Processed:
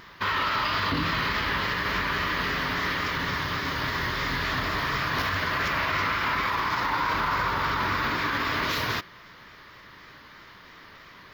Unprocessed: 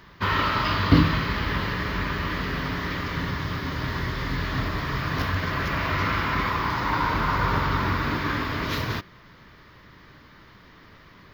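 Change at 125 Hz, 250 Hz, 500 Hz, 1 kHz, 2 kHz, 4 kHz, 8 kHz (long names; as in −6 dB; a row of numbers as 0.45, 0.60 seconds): −8.5, −7.0, −2.5, 0.0, +2.0, +2.0, +3.0 decibels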